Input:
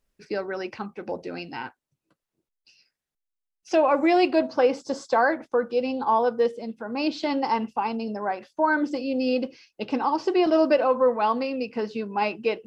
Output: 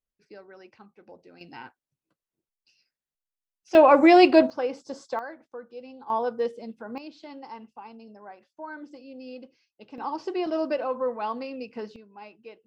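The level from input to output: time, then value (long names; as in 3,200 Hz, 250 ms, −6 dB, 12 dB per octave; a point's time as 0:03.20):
−17.5 dB
from 0:01.41 −8 dB
from 0:03.75 +5 dB
from 0:04.50 −8 dB
from 0:05.19 −17 dB
from 0:06.10 −5 dB
from 0:06.98 −17 dB
from 0:09.98 −7.5 dB
from 0:11.96 −20 dB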